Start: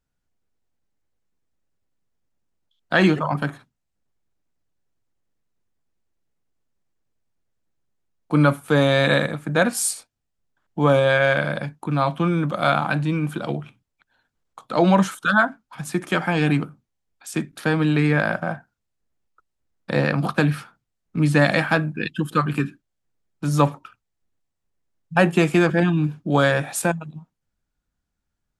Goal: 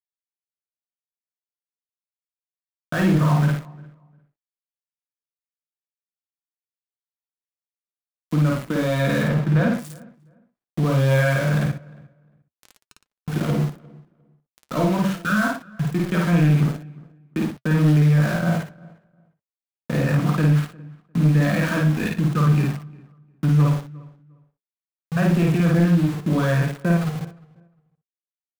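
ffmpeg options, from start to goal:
-filter_complex "[0:a]bass=f=250:g=11,treble=f=4000:g=-14,alimiter=limit=0.282:level=0:latency=1:release=39,asuperstop=centerf=830:order=20:qfactor=6.5,asettb=1/sr,asplit=3[s0][s1][s2];[s0]atrim=end=11.664[s3];[s1]atrim=start=11.66:end=13.28,asetpts=PTS-STARTPTS,afade=t=in:d=0.004:c=qsin,afade=t=out:st=1.616:d=0.004:c=qsin,aderivative[s4];[s2]atrim=start=13.276[s5];[s3][s4]acrossfade=d=0.004:c1=hsin:c2=qsin[s6];[s6][s5]acrossfade=d=0.004:c1=qsin:c2=hsin,bandreject=f=92.86:t=h:w=4,bandreject=f=185.72:t=h:w=4,bandreject=f=278.58:t=h:w=4,bandreject=f=371.44:t=h:w=4,bandreject=f=464.3:t=h:w=4,bandreject=f=557.16:t=h:w=4,bandreject=f=650.02:t=h:w=4,bandreject=f=742.88:t=h:w=4,bandreject=f=835.74:t=h:w=4,bandreject=f=928.6:t=h:w=4,bandreject=f=1021.46:t=h:w=4,bandreject=f=1114.32:t=h:w=4,bandreject=f=1207.18:t=h:w=4,bandreject=f=1300.04:t=h:w=4,bandreject=f=1392.9:t=h:w=4,bandreject=f=1485.76:t=h:w=4,bandreject=f=1578.62:t=h:w=4,bandreject=f=1671.48:t=h:w=4,bandreject=f=1764.34:t=h:w=4,bandreject=f=1857.2:t=h:w=4,bandreject=f=1950.06:t=h:w=4,bandreject=f=2042.92:t=h:w=4,bandreject=f=2135.78:t=h:w=4,aeval=exprs='val(0)*gte(abs(val(0)),0.0422)':c=same,asettb=1/sr,asplit=3[s7][s8][s9];[s7]atrim=end=9.234[s10];[s8]atrim=start=9.23:end=9.74,asetpts=PTS-STARTPTS,afade=t=in:d=0.004:c=qsin,afade=t=out:st=0.506:d=0.004:c=qsin,acrossover=split=4100[s11][s12];[s12]acompressor=threshold=0.00398:ratio=4:attack=1:release=60[s13];[s11][s13]amix=inputs=2:normalize=0[s14];[s9]atrim=start=9.736[s15];[s10][s14]acrossfade=d=0.004:c1=hsin:c2=qsin[s16];[s16][s15]acrossfade=d=0.004:c1=qsin:c2=hsin,asplit=2[s17][s18];[s18]aecho=0:1:52.48|113.7:0.891|0.282[s19];[s17][s19]amix=inputs=2:normalize=0,flanger=delay=3.3:depth=5.1:regen=-65:speed=0.23:shape=triangular,asplit=2[s20][s21];[s21]adelay=353,lowpass=f=1800:p=1,volume=0.0631,asplit=2[s22][s23];[s23]adelay=353,lowpass=f=1800:p=1,volume=0.21[s24];[s22][s24]amix=inputs=2:normalize=0[s25];[s20][s25]amix=inputs=2:normalize=0,asoftclip=type=tanh:threshold=0.237,volume=1.41"

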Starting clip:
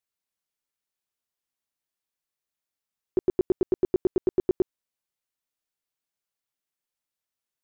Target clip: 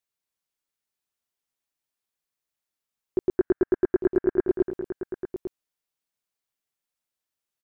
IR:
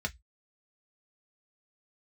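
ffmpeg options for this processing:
-filter_complex "[0:a]asettb=1/sr,asplit=3[s0][s1][s2];[s0]atrim=end=3.374[s3];[s1]atrim=start=3.37:end=4.47,asetpts=PTS-STARTPTS,afade=t=in:d=0.004:c=qsin,afade=t=out:st=1.096:d=0.004:c=qsin,lowpass=f=1600:t=q:w=8.6[s4];[s2]atrim=start=4.466[s5];[s3][s4]acrossfade=d=0.004:c1=hsin:c2=qsin[s6];[s6][s5]acrossfade=d=0.004:c1=qsin:c2=hsin,asplit=2[s7][s8];[s8]aecho=0:1:223|851:0.299|0.335[s9];[s7][s9]amix=inputs=2:normalize=0"

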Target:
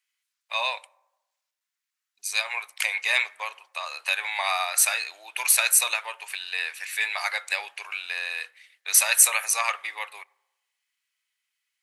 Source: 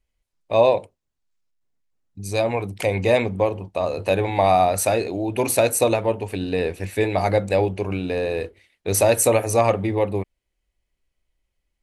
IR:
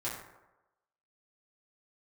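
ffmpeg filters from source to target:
-filter_complex "[0:a]highpass=f=1300:w=0.5412,highpass=f=1300:w=1.3066,asplit=2[s0][s1];[1:a]atrim=start_sample=2205[s2];[s1][s2]afir=irnorm=-1:irlink=0,volume=0.0668[s3];[s0][s3]amix=inputs=2:normalize=0,volume=1.78"

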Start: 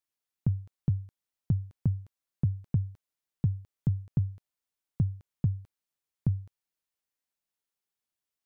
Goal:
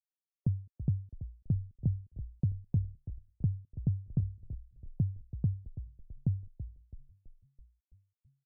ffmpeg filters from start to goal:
-filter_complex "[0:a]afftdn=nr=34:nf=-45,asplit=7[s0][s1][s2][s3][s4][s5][s6];[s1]adelay=330,afreqshift=-39,volume=0.266[s7];[s2]adelay=660,afreqshift=-78,volume=0.146[s8];[s3]adelay=990,afreqshift=-117,volume=0.0804[s9];[s4]adelay=1320,afreqshift=-156,volume=0.0442[s10];[s5]adelay=1650,afreqshift=-195,volume=0.0243[s11];[s6]adelay=1980,afreqshift=-234,volume=0.0133[s12];[s0][s7][s8][s9][s10][s11][s12]amix=inputs=7:normalize=0,volume=0.708"

